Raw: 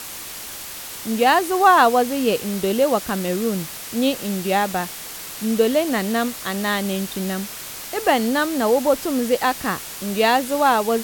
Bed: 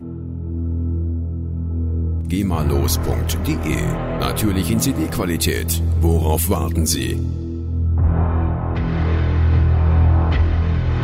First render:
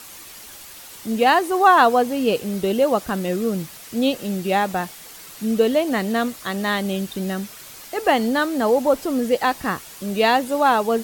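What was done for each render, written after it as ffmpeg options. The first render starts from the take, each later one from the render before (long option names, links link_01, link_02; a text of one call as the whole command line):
ffmpeg -i in.wav -af "afftdn=noise_reduction=8:noise_floor=-34" out.wav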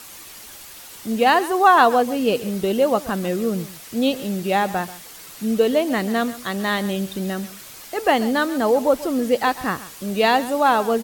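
ffmpeg -i in.wav -af "aecho=1:1:135:0.15" out.wav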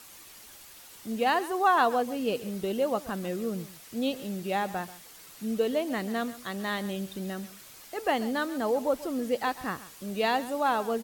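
ffmpeg -i in.wav -af "volume=-9.5dB" out.wav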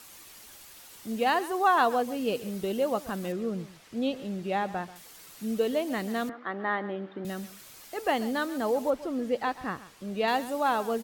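ffmpeg -i in.wav -filter_complex "[0:a]asettb=1/sr,asplit=3[link_01][link_02][link_03];[link_01]atrim=end=3.324[link_04];[link_02]atrim=start=3.32:end=4.96,asetpts=PTS-STARTPTS,afade=type=in:duration=0.004:curve=qsin,afade=type=out:start_time=1.636:duration=0.004:curve=qsin,aemphasis=mode=reproduction:type=50fm[link_05];[link_03]atrim=start=4.956[link_06];[link_04][link_05]acrossfade=duration=0.004:curve1=hsin:curve2=qsin[link_07];[link_07][link_06]acrossfade=duration=0.004:curve1=qsin:curve2=hsin,asettb=1/sr,asplit=3[link_08][link_09][link_10];[link_08]atrim=end=6.294[link_11];[link_09]atrim=start=6.29:end=7.25,asetpts=PTS-STARTPTS,afade=type=in:duration=0.004:curve=qsin,afade=type=out:start_time=0.956:duration=0.004:curve=qsin,highpass=240,equalizer=frequency=310:width_type=q:width=4:gain=8,equalizer=frequency=460:width_type=q:width=4:gain=3,equalizer=frequency=840:width_type=q:width=4:gain=6,equalizer=frequency=1300:width_type=q:width=4:gain=6,equalizer=frequency=1800:width_type=q:width=4:gain=3,equalizer=frequency=2600:width_type=q:width=4:gain=-7,lowpass=frequency=2600:width=0.5412,lowpass=frequency=2600:width=1.3066[link_12];[link_10]atrim=start=7.246[link_13];[link_11][link_12]acrossfade=duration=0.004:curve1=hsin:curve2=qsin[link_14];[link_14][link_13]acrossfade=duration=0.004:curve1=qsin:curve2=hsin,asettb=1/sr,asplit=3[link_15][link_16][link_17];[link_15]atrim=end=8.904[link_18];[link_16]atrim=start=8.9:end=10.28,asetpts=PTS-STARTPTS,afade=type=in:duration=0.004:curve=qsin,afade=type=out:start_time=1.376:duration=0.004:curve=qsin,aemphasis=mode=reproduction:type=50kf[link_19];[link_17]atrim=start=10.276[link_20];[link_18][link_19]acrossfade=duration=0.004:curve1=hsin:curve2=qsin[link_21];[link_21][link_20]acrossfade=duration=0.004:curve1=qsin:curve2=hsin" out.wav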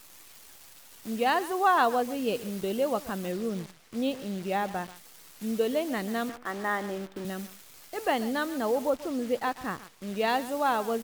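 ffmpeg -i in.wav -af "acrusher=bits=8:dc=4:mix=0:aa=0.000001" out.wav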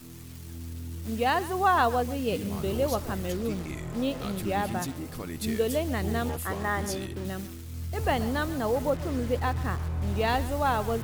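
ffmpeg -i in.wav -i bed.wav -filter_complex "[1:a]volume=-16.5dB[link_01];[0:a][link_01]amix=inputs=2:normalize=0" out.wav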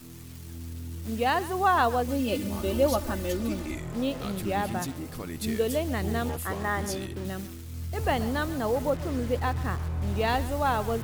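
ffmpeg -i in.wav -filter_complex "[0:a]asettb=1/sr,asplit=3[link_01][link_02][link_03];[link_01]atrim=end=2.084[link_04];[link_02]atrim=start=2.08:end=3.78,asetpts=PTS-STARTPTS,afade=type=in:duration=0.004:curve=qsin,afade=type=out:start_time=1.696:duration=0.004:curve=qsin,aecho=1:1:3.4:0.8,atrim=end_sample=74970[link_05];[link_03]atrim=start=3.776[link_06];[link_04][link_05]acrossfade=duration=0.004:curve1=hsin:curve2=qsin[link_07];[link_07][link_06]acrossfade=duration=0.004:curve1=qsin:curve2=hsin" out.wav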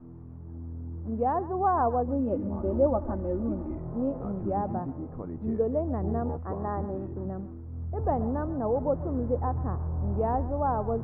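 ffmpeg -i in.wav -af "lowpass=frequency=1000:width=0.5412,lowpass=frequency=1000:width=1.3066" out.wav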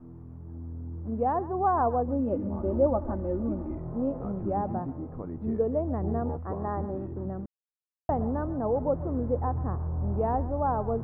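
ffmpeg -i in.wav -filter_complex "[0:a]asplit=3[link_01][link_02][link_03];[link_01]atrim=end=7.46,asetpts=PTS-STARTPTS,afade=type=out:start_time=7.456:duration=0.004:curve=hsin[link_04];[link_02]atrim=start=7.46:end=8.09,asetpts=PTS-STARTPTS,volume=0[link_05];[link_03]atrim=start=8.09,asetpts=PTS-STARTPTS,afade=type=in:duration=0.004:curve=hsin[link_06];[link_04][link_05][link_06]concat=n=3:v=0:a=1" out.wav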